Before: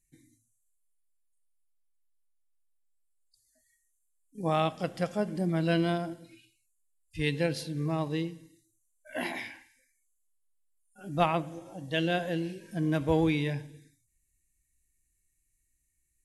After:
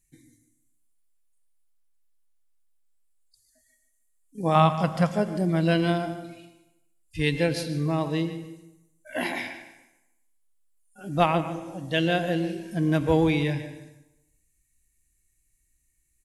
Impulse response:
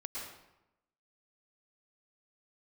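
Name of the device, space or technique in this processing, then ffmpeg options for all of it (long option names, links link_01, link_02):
compressed reverb return: -filter_complex "[0:a]asettb=1/sr,asplit=3[link_01][link_02][link_03];[link_01]atrim=end=4.554[link_04];[link_02]atrim=start=4.55:end=5.12,asetpts=PTS-STARTPTS,afade=type=in:duration=0.004:curve=qsin,afade=type=out:start_time=0.566:duration=0.004:curve=qsin,equalizer=frequency=160:width_type=o:width=0.67:gain=8,equalizer=frequency=400:width_type=o:width=0.67:gain=-5,equalizer=frequency=1000:width_type=o:width=0.67:gain=11[link_05];[link_03]atrim=start=5.116[link_06];[link_04][link_05]acrossfade=duration=0.004:curve1=hsin:curve2=qsin[link_07];[link_07][link_06]acrossfade=duration=0.004:curve1=qsin:curve2=hsin,asplit=2[link_08][link_09];[1:a]atrim=start_sample=2205[link_10];[link_09][link_10]afir=irnorm=-1:irlink=0,acompressor=threshold=-28dB:ratio=6,volume=-10dB[link_11];[link_08][link_11]amix=inputs=2:normalize=0,asplit=2[link_12][link_13];[link_13]adelay=148,lowpass=frequency=3900:poles=1,volume=-12.5dB,asplit=2[link_14][link_15];[link_15]adelay=148,lowpass=frequency=3900:poles=1,volume=0.29,asplit=2[link_16][link_17];[link_17]adelay=148,lowpass=frequency=3900:poles=1,volume=0.29[link_18];[link_12][link_14][link_16][link_18]amix=inputs=4:normalize=0,volume=3.5dB"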